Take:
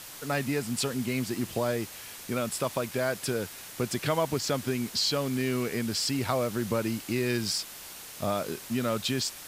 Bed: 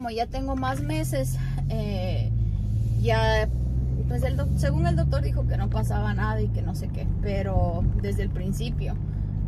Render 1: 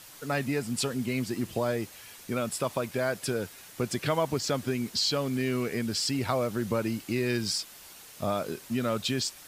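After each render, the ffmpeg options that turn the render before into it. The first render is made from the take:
ffmpeg -i in.wav -af "afftdn=noise_reduction=6:noise_floor=-44" out.wav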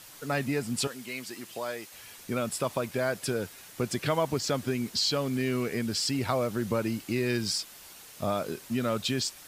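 ffmpeg -i in.wav -filter_complex "[0:a]asettb=1/sr,asplit=3[link_01][link_02][link_03];[link_01]atrim=end=0.874[link_04];[link_02]atrim=start=0.87:end=1.92,asetpts=PTS-STARTPTS,afade=type=in:duration=0.004:curve=qsin,afade=type=out:start_time=1.046:duration=0.004:curve=qsin,highpass=frequency=1000:poles=1[link_05];[link_03]atrim=start=1.916[link_06];[link_04][link_05]acrossfade=duration=0.004:curve1=hsin:curve2=qsin[link_07];[link_07][link_06]acrossfade=duration=0.004:curve1=qsin:curve2=hsin" out.wav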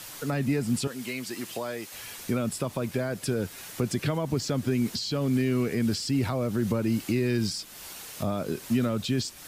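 ffmpeg -i in.wav -filter_complex "[0:a]asplit=2[link_01][link_02];[link_02]alimiter=limit=-24dB:level=0:latency=1:release=27,volume=2.5dB[link_03];[link_01][link_03]amix=inputs=2:normalize=0,acrossover=split=350[link_04][link_05];[link_05]acompressor=threshold=-36dB:ratio=2.5[link_06];[link_04][link_06]amix=inputs=2:normalize=0" out.wav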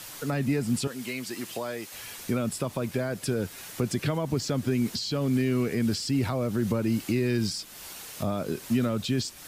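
ffmpeg -i in.wav -af anull out.wav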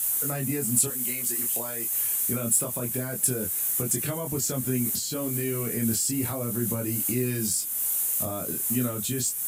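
ffmpeg -i in.wav -af "aexciter=amount=6.2:drive=9.1:freq=7100,flanger=delay=22.5:depth=3.8:speed=0.25" out.wav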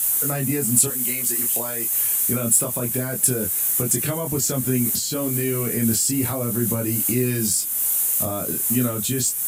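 ffmpeg -i in.wav -af "volume=5.5dB" out.wav

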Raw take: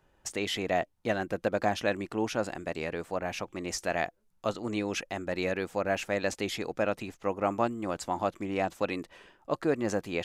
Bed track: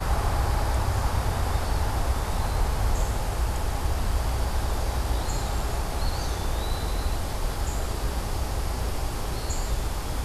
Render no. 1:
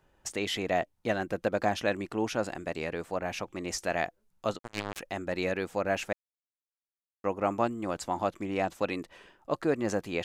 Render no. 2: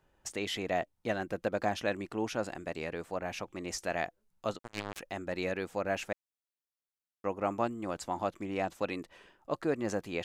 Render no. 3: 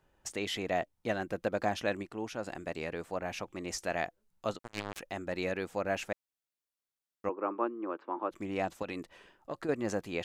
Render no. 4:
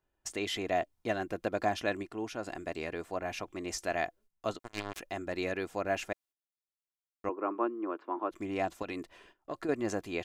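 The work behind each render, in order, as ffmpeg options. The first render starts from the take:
ffmpeg -i in.wav -filter_complex "[0:a]asplit=3[link_01][link_02][link_03];[link_01]afade=type=out:start_time=4.57:duration=0.02[link_04];[link_02]acrusher=bits=3:mix=0:aa=0.5,afade=type=in:start_time=4.57:duration=0.02,afade=type=out:start_time=4.99:duration=0.02[link_05];[link_03]afade=type=in:start_time=4.99:duration=0.02[link_06];[link_04][link_05][link_06]amix=inputs=3:normalize=0,asplit=3[link_07][link_08][link_09];[link_07]atrim=end=6.13,asetpts=PTS-STARTPTS,afade=type=out:start_time=6.126:duration=0.004:curve=hsin[link_10];[link_08]atrim=start=6.13:end=7.24,asetpts=PTS-STARTPTS,volume=0[link_11];[link_09]atrim=start=7.24,asetpts=PTS-STARTPTS,afade=type=in:duration=0.004:curve=hsin[link_12];[link_10][link_11][link_12]concat=n=3:v=0:a=1" out.wav
ffmpeg -i in.wav -af "volume=-3.5dB" out.wav
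ffmpeg -i in.wav -filter_complex "[0:a]asettb=1/sr,asplit=3[link_01][link_02][link_03];[link_01]atrim=end=7.294[link_04];[link_02]atrim=start=7.29:end=8.31,asetpts=PTS-STARTPTS,afade=type=in:duration=0.004:curve=qsin,afade=type=out:start_time=1.016:duration=0.004:curve=qsin,highpass=frequency=290:width=0.5412,highpass=frequency=290:width=1.3066,equalizer=frequency=340:width_type=q:width=4:gain=6,equalizer=frequency=710:width_type=q:width=4:gain=-9,equalizer=frequency=1100:width_type=q:width=4:gain=4,equalizer=frequency=2000:width_type=q:width=4:gain=-9,lowpass=frequency=2200:width=0.5412,lowpass=frequency=2200:width=1.3066[link_05];[link_03]atrim=start=8.306[link_06];[link_04][link_05]acrossfade=duration=0.004:curve1=hsin:curve2=qsin[link_07];[link_07][link_06]acrossfade=duration=0.004:curve1=qsin:curve2=hsin,asettb=1/sr,asplit=3[link_08][link_09][link_10];[link_08]atrim=end=8.824[link_11];[link_09]atrim=start=8.82:end=9.69,asetpts=PTS-STARTPTS,afade=type=in:duration=0.004:curve=qsin,afade=type=out:start_time=0.866:duration=0.004:curve=qsin,acompressor=threshold=-33dB:ratio=5:attack=3.2:release=140:knee=1:detection=peak[link_12];[link_10]atrim=start=9.686[link_13];[link_11][link_12]acrossfade=duration=0.004:curve1=hsin:curve2=qsin[link_14];[link_14][link_13]acrossfade=duration=0.004:curve1=qsin:curve2=hsin,asplit=3[link_15][link_16][link_17];[link_15]atrim=end=2.032[link_18];[link_16]atrim=start=2.028:end=2.472,asetpts=PTS-STARTPTS,volume=-4.5dB[link_19];[link_17]atrim=start=2.468[link_20];[link_18][link_19]acrossfade=duration=0.004:curve1=hsin:curve2=hsin[link_21];[link_21][link_20]acrossfade=duration=0.004:curve1=hsin:curve2=hsin" out.wav
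ffmpeg -i in.wav -af "agate=range=-12dB:threshold=-59dB:ratio=16:detection=peak,aecho=1:1:2.9:0.34" out.wav

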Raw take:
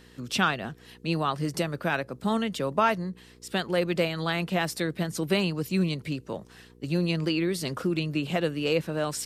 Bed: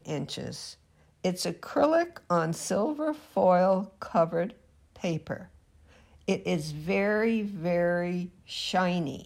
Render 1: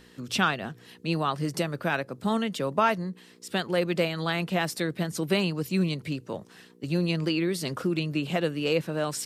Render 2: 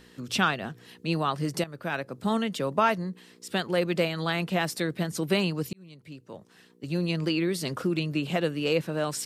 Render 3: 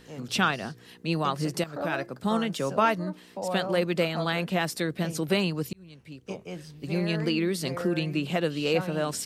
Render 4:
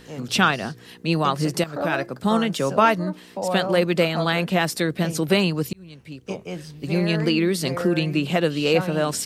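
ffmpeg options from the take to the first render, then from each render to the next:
ffmpeg -i in.wav -af "bandreject=frequency=60:width_type=h:width=4,bandreject=frequency=120:width_type=h:width=4" out.wav
ffmpeg -i in.wav -filter_complex "[0:a]asplit=3[link_01][link_02][link_03];[link_01]atrim=end=1.64,asetpts=PTS-STARTPTS,afade=type=out:start_time=1.636:duration=0.004:curve=hsin:silence=0.223872[link_04];[link_02]atrim=start=1.64:end=5.73,asetpts=PTS-STARTPTS,afade=type=in:duration=0.73:curve=qsin:silence=0.223872,afade=type=out:start_time=4.086:duration=0.004:curve=hsin[link_05];[link_03]atrim=start=5.73,asetpts=PTS-STARTPTS,afade=type=in:duration=1.59[link_06];[link_04][link_05][link_06]concat=n=3:v=0:a=1" out.wav
ffmpeg -i in.wav -i bed.wav -filter_complex "[1:a]volume=-10dB[link_01];[0:a][link_01]amix=inputs=2:normalize=0" out.wav
ffmpeg -i in.wav -af "volume=6dB" out.wav

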